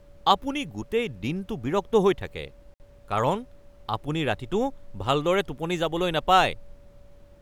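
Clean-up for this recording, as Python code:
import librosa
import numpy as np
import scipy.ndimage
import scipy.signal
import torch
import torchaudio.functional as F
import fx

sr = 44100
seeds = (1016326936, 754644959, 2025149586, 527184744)

y = fx.notch(x, sr, hz=570.0, q=30.0)
y = fx.fix_interpolate(y, sr, at_s=(2.74,), length_ms=59.0)
y = fx.noise_reduce(y, sr, print_start_s=6.9, print_end_s=7.4, reduce_db=19.0)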